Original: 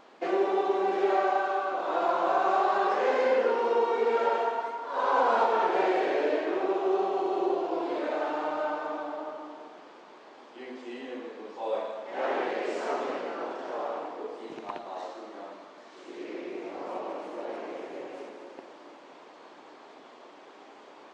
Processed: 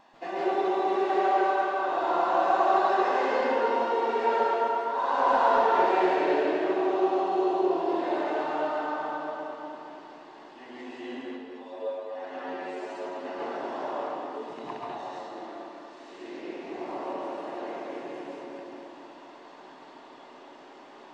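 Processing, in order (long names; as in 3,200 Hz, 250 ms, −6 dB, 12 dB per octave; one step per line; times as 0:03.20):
0:11.22–0:13.25: stiff-string resonator 88 Hz, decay 0.21 s, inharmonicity 0.002
feedback echo with a low-pass in the loop 241 ms, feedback 47%, low-pass 4,300 Hz, level −6 dB
convolution reverb RT60 0.30 s, pre-delay 133 ms, DRR −2 dB
level −5 dB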